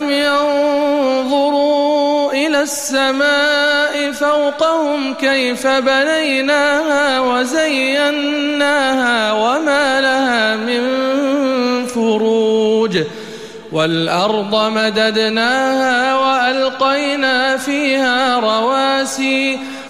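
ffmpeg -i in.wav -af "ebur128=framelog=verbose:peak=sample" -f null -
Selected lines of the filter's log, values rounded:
Integrated loudness:
  I:         -14.4 LUFS
  Threshold: -24.4 LUFS
Loudness range:
  LRA:         1.6 LU
  Threshold: -34.4 LUFS
  LRA low:   -15.5 LUFS
  LRA high:  -14.0 LUFS
Sample peak:
  Peak:       -4.3 dBFS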